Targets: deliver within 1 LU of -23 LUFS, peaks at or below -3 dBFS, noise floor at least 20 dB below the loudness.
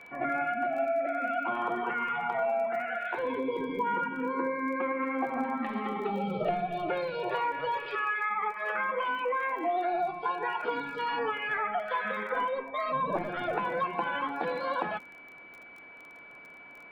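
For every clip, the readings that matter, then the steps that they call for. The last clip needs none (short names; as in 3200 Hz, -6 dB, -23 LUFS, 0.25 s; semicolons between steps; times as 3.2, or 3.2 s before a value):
ticks 24/s; steady tone 2300 Hz; tone level -48 dBFS; loudness -31.0 LUFS; peak -16.5 dBFS; loudness target -23.0 LUFS
-> de-click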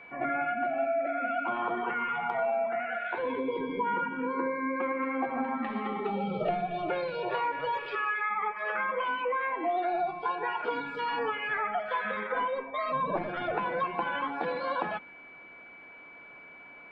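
ticks 0/s; steady tone 2300 Hz; tone level -48 dBFS
-> notch 2300 Hz, Q 30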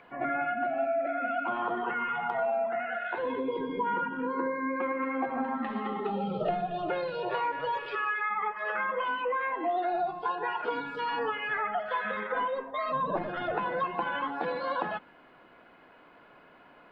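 steady tone none; loudness -31.5 LUFS; peak -16.5 dBFS; loudness target -23.0 LUFS
-> gain +8.5 dB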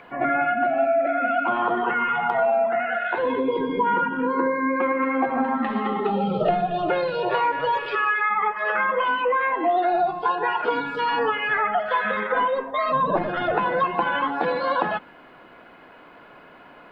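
loudness -23.0 LUFS; peak -8.0 dBFS; noise floor -48 dBFS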